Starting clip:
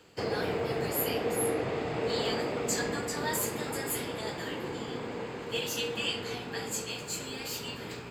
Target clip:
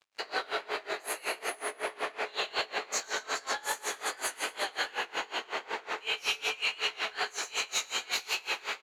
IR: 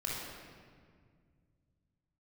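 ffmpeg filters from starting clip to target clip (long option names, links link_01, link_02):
-filter_complex "[0:a]asetrate=40517,aresample=44100,aecho=1:1:116|232|348|464|580|696|812:0.668|0.354|0.188|0.0995|0.0527|0.0279|0.0148,flanger=delay=18.5:depth=5:speed=2.6,alimiter=level_in=5dB:limit=-24dB:level=0:latency=1:release=123,volume=-5dB,highpass=680,aeval=exprs='sgn(val(0))*max(abs(val(0))-0.00112,0)':channel_layout=same,highshelf=frequency=9800:gain=-8.5,asplit=2[link_01][link_02];[link_02]highpass=frequency=720:poles=1,volume=15dB,asoftclip=type=tanh:threshold=-23dB[link_03];[link_01][link_03]amix=inputs=2:normalize=0,lowpass=frequency=5600:poles=1,volume=-6dB,aeval=exprs='val(0)*pow(10,-24*(0.5-0.5*cos(2*PI*5.4*n/s))/20)':channel_layout=same,volume=8.5dB"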